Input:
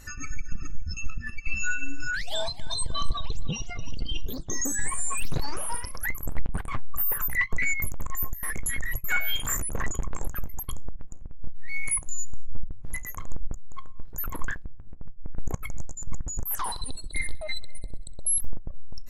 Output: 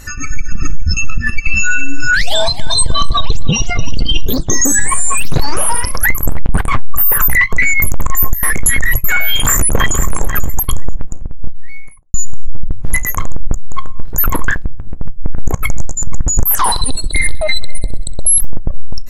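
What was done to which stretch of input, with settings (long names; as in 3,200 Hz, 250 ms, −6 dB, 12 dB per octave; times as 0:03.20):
0:09.30–0:10.00: delay throw 490 ms, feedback 10%, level −11.5 dB
0:10.83–0:12.14: fade out and dull
whole clip: automatic gain control gain up to 6.5 dB; boost into a limiter +14 dB; level −1 dB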